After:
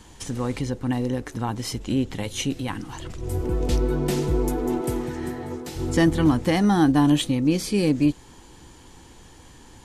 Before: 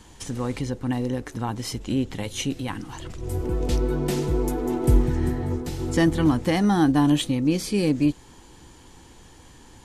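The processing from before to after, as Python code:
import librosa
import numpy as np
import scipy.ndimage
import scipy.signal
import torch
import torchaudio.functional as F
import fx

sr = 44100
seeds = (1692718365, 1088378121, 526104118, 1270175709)

y = fx.highpass(x, sr, hz=390.0, slope=6, at=(4.81, 5.76))
y = y * librosa.db_to_amplitude(1.0)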